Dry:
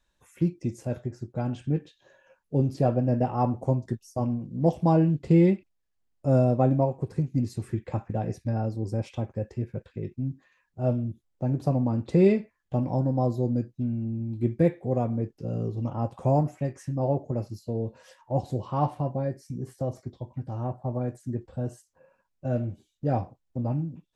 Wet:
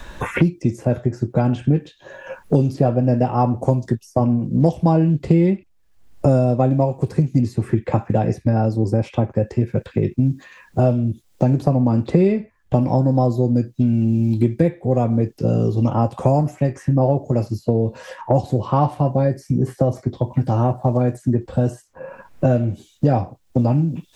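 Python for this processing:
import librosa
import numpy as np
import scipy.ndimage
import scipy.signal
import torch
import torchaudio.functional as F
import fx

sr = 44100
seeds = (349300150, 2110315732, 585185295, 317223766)

y = fx.band_squash(x, sr, depth_pct=100)
y = F.gain(torch.from_numpy(y), 8.5).numpy()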